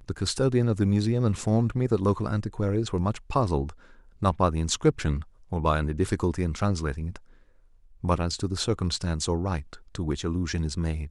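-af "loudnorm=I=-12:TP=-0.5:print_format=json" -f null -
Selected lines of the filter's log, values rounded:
"input_i" : "-27.4",
"input_tp" : "-8.0",
"input_lra" : "2.7",
"input_thresh" : "-37.7",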